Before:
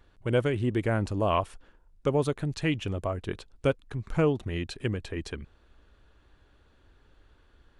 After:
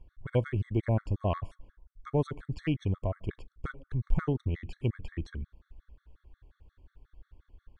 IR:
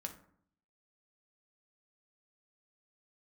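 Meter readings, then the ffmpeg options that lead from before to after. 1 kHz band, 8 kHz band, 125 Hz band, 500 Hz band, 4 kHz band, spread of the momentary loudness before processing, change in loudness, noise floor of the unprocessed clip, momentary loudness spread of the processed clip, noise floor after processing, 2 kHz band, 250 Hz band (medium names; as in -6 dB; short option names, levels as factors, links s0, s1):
-7.5 dB, under -15 dB, 0.0 dB, -7.5 dB, -11.5 dB, 10 LU, -3.5 dB, -62 dBFS, 13 LU, -79 dBFS, -9.0 dB, -4.5 dB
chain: -filter_complex "[0:a]aemphasis=mode=reproduction:type=bsi,aeval=exprs='0.398*(cos(1*acos(clip(val(0)/0.398,-1,1)))-cos(1*PI/2))+0.0251*(cos(3*acos(clip(val(0)/0.398,-1,1)))-cos(3*PI/2))':c=same,asplit=2[s0][s1];[1:a]atrim=start_sample=2205,lowshelf=f=160:g=-11[s2];[s1][s2]afir=irnorm=-1:irlink=0,volume=0.224[s3];[s0][s3]amix=inputs=2:normalize=0,afftfilt=real='re*gt(sin(2*PI*5.6*pts/sr)*(1-2*mod(floor(b*sr/1024/1100),2)),0)':imag='im*gt(sin(2*PI*5.6*pts/sr)*(1-2*mod(floor(b*sr/1024/1100),2)),0)':win_size=1024:overlap=0.75,volume=0.596"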